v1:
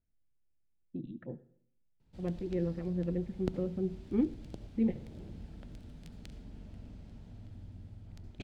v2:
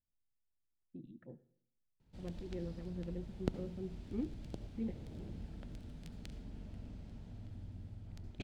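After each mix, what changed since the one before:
speech -10.0 dB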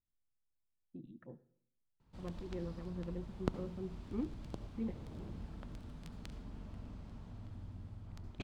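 master: add peaking EQ 1.1 kHz +11 dB 0.66 oct

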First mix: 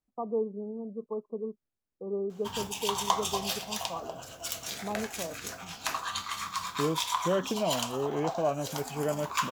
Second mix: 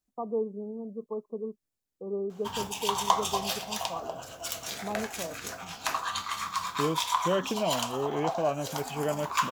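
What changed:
second voice: add treble shelf 3.4 kHz +12 dB; background: add peaking EQ 820 Hz +3.5 dB 2.2 oct

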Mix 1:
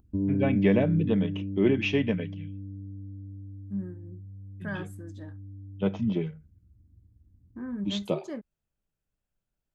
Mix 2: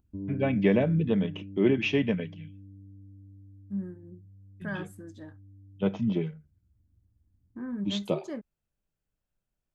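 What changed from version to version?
background -9.0 dB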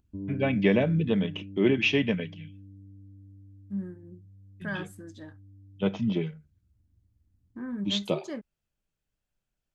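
master: add peaking EQ 3.9 kHz +6 dB 2.3 oct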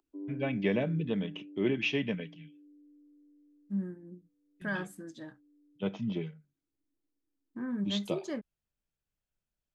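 first voice -6.5 dB; background: add rippled Chebyshev high-pass 270 Hz, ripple 3 dB

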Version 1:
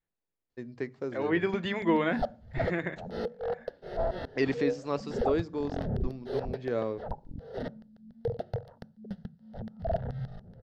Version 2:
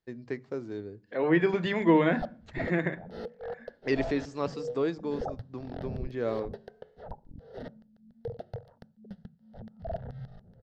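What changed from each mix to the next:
first voice: entry -0.50 s; second voice: send +7.5 dB; background -5.5 dB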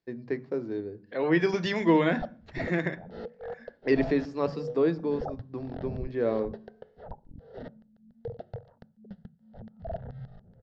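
first voice: send +10.0 dB; second voice: remove boxcar filter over 8 samples; master: add distance through air 130 m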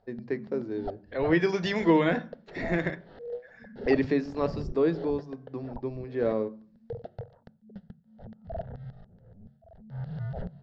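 background: entry -1.35 s

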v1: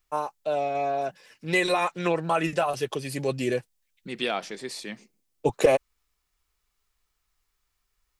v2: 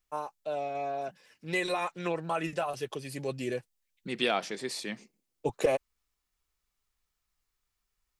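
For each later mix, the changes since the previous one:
first voice -7.0 dB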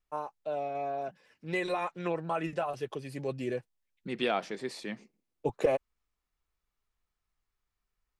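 master: add treble shelf 3.3 kHz -11 dB

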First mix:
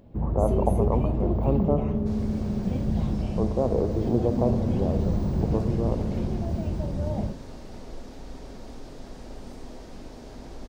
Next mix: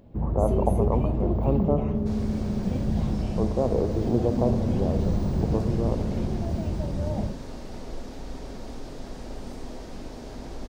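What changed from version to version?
second sound +3.5 dB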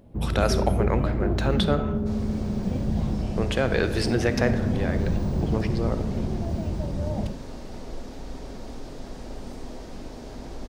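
speech: remove steep low-pass 1.1 kHz 72 dB/octave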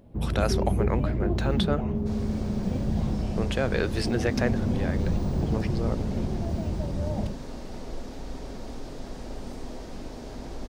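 reverb: off

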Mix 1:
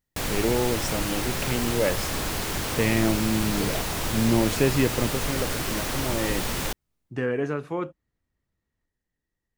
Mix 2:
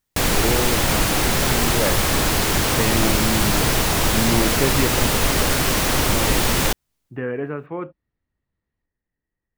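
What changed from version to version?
speech: add low-pass 2.6 kHz 24 dB/octave; first sound +9.5 dB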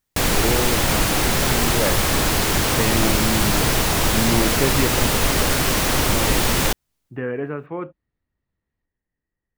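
no change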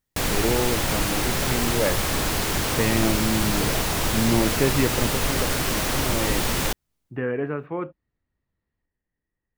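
first sound -5.0 dB

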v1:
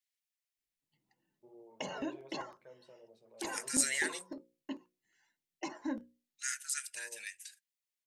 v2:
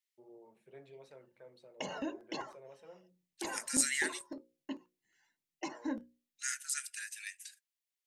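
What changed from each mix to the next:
first voice: entry -1.25 s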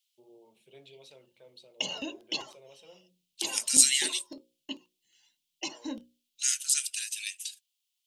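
master: add resonant high shelf 2.3 kHz +10 dB, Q 3

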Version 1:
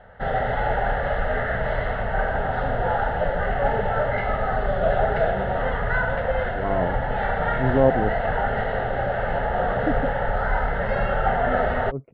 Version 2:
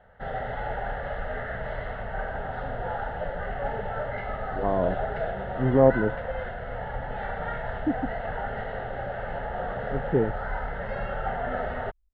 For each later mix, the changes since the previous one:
speech: entry -2.00 s; background -8.5 dB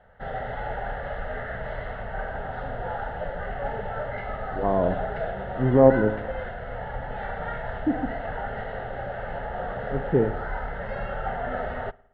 speech: send on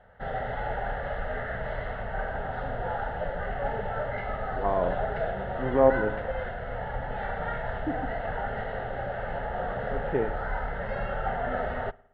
speech: add tilt EQ +4.5 dB/octave

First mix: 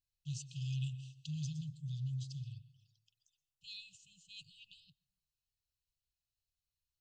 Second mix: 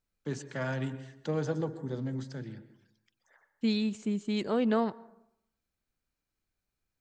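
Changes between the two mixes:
second voice +9.5 dB; master: remove brick-wall FIR band-stop 160–2500 Hz

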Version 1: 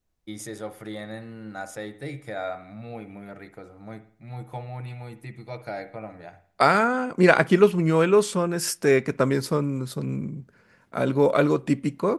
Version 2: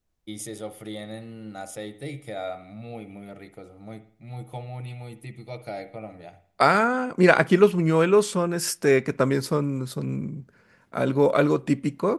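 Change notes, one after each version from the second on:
first voice: add graphic EQ with 31 bands 1 kHz -7 dB, 1.6 kHz -11 dB, 3.15 kHz +6 dB, 10 kHz +7 dB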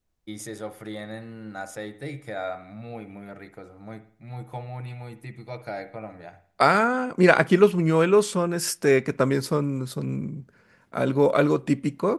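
first voice: add graphic EQ with 31 bands 1 kHz +7 dB, 1.6 kHz +11 dB, 3.15 kHz -6 dB, 10 kHz -7 dB

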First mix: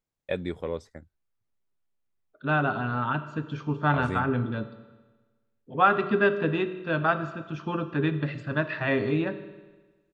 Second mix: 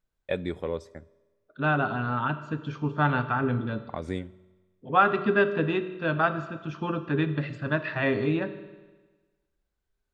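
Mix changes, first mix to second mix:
first voice: send on; second voice: entry -0.85 s

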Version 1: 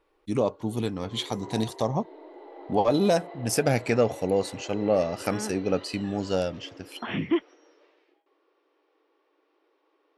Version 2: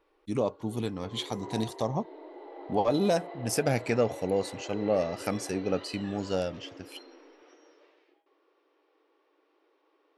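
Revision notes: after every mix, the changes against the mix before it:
first voice -3.5 dB; second voice: muted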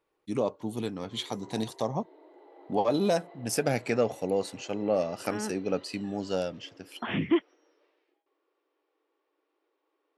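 first voice: add high-pass 130 Hz 12 dB/octave; second voice: unmuted; background -8.5 dB

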